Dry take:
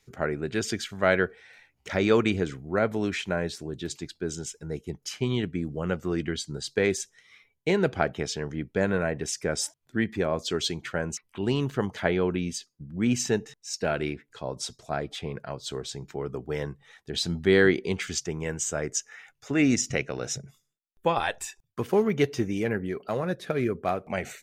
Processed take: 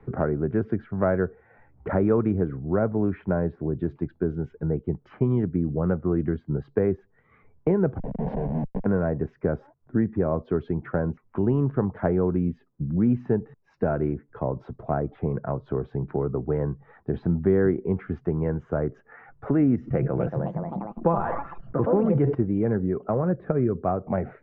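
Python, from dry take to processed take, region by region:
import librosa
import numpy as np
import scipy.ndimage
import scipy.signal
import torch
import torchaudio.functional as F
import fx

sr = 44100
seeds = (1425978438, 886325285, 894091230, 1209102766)

y = fx.chain(x, sr, fx.over_compress(threshold_db=-29.0, ratio=-0.5),
    fx.schmitt(flips_db=-33.0),
    fx.fixed_phaser(hz=340.0, stages=6), at=(7.98, 8.86))
y = fx.chain(y, sr, fx.echo_pitch(ms=277, semitones=3, count=3, db_per_echo=-6.0),
    fx.comb(ms=5.9, depth=0.31),
    fx.sustainer(db_per_s=59.0), at=(19.81, 22.35))
y = scipy.signal.sosfilt(scipy.signal.butter(4, 1300.0, 'lowpass', fs=sr, output='sos'), y)
y = fx.low_shelf(y, sr, hz=300.0, db=7.5)
y = fx.band_squash(y, sr, depth_pct=70)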